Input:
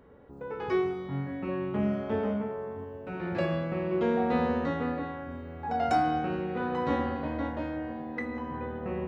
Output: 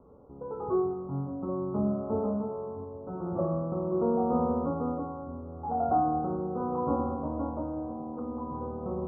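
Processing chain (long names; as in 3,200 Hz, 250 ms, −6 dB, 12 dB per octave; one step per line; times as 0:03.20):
Butterworth low-pass 1,300 Hz 96 dB per octave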